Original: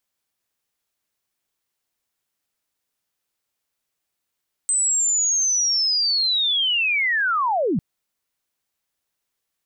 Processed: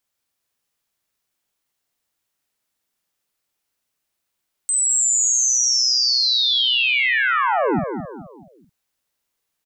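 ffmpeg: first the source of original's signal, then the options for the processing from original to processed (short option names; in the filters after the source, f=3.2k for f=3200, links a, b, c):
-f lavfi -i "aevalsrc='pow(10,(-17-1*t/3.1)/20)*sin(2*PI*(8200*t-8060*t*t/(2*3.1)))':d=3.1:s=44100"
-filter_complex "[0:a]asplit=2[a][b];[b]adelay=48,volume=-4.5dB[c];[a][c]amix=inputs=2:normalize=0,asplit=2[d][e];[e]aecho=0:1:214|428|642|856:0.422|0.164|0.0641|0.025[f];[d][f]amix=inputs=2:normalize=0"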